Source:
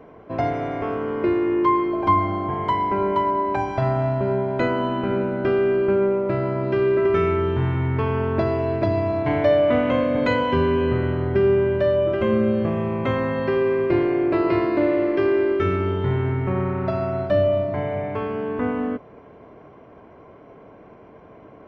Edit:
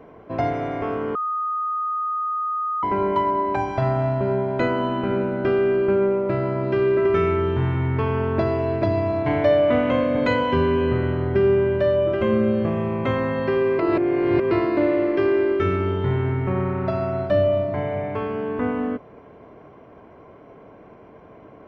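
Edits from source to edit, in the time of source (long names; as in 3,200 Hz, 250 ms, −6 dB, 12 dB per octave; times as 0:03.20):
0:01.15–0:02.83: beep over 1,240 Hz −22 dBFS
0:13.79–0:14.51: reverse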